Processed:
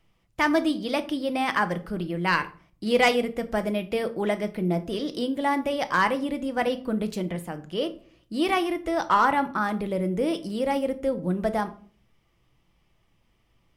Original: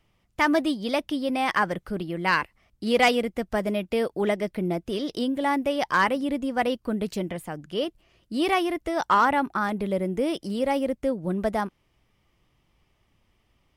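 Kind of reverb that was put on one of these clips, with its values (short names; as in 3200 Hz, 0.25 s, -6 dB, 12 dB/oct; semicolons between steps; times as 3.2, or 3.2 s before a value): shoebox room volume 400 m³, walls furnished, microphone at 0.69 m; gain -1 dB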